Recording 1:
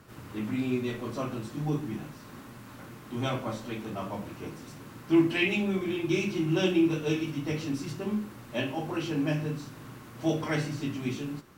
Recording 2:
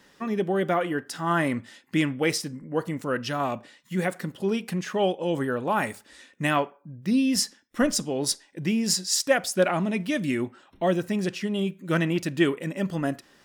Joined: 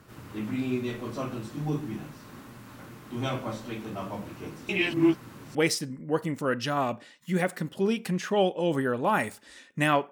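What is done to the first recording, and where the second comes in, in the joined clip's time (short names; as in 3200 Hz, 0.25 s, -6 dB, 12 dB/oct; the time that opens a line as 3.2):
recording 1
4.69–5.55 reverse
5.55 switch to recording 2 from 2.18 s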